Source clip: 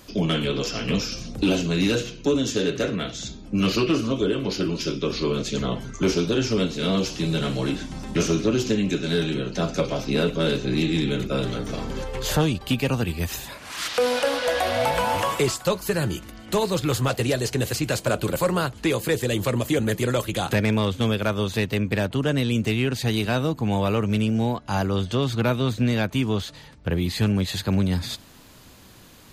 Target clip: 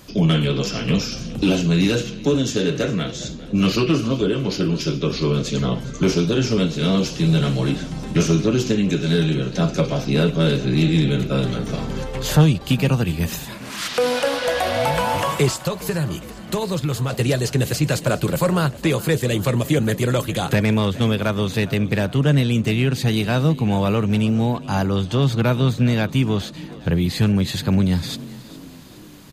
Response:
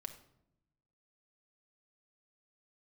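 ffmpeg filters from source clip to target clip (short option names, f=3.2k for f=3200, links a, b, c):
-filter_complex "[0:a]equalizer=f=150:w=3:g=9,asettb=1/sr,asplit=3[a][b][c];[a]atrim=end=15.634[d];[b]atrim=start=15.63:end=17.13,asetpts=PTS-STARTPTS,afade=t=in:d=0.004:c=qsin,afade=t=out:st=1.496:d=0.004:c=qsin,acompressor=threshold=-21dB:ratio=6[e];[c]atrim=start=17.126[f];[d][e]acrossfade=d=0.004:c1=hsin:c2=qsin[g];[g][f]acrossfade=d=0.004:c1=qsin:c2=hsin,asplit=2[h][i];[i]asplit=5[j][k][l][m][n];[j]adelay=411,afreqshift=37,volume=-18.5dB[o];[k]adelay=822,afreqshift=74,volume=-23.9dB[p];[l]adelay=1233,afreqshift=111,volume=-29.2dB[q];[m]adelay=1644,afreqshift=148,volume=-34.6dB[r];[n]adelay=2055,afreqshift=185,volume=-39.9dB[s];[o][p][q][r][s]amix=inputs=5:normalize=0[t];[h][t]amix=inputs=2:normalize=0,volume=2dB"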